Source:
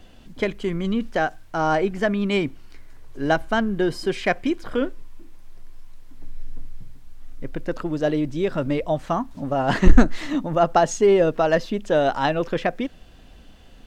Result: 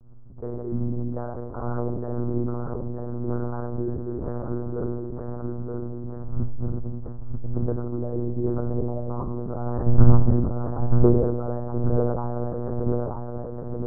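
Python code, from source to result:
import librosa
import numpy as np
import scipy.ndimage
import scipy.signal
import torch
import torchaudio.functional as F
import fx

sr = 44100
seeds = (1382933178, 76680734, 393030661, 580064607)

p1 = fx.level_steps(x, sr, step_db=13)
p2 = fx.low_shelf(p1, sr, hz=370.0, db=6.5)
p3 = p2 + fx.echo_feedback(p2, sr, ms=931, feedback_pct=50, wet_db=-5.0, dry=0)
p4 = fx.room_shoebox(p3, sr, seeds[0], volume_m3=3100.0, walls='furnished', distance_m=4.6)
p5 = fx.lpc_monotone(p4, sr, seeds[1], pitch_hz=120.0, order=8)
p6 = scipy.signal.sosfilt(scipy.signal.butter(8, 1300.0, 'lowpass', fs=sr, output='sos'), p5)
p7 = fx.sustainer(p6, sr, db_per_s=42.0)
y = p7 * librosa.db_to_amplitude(-11.0)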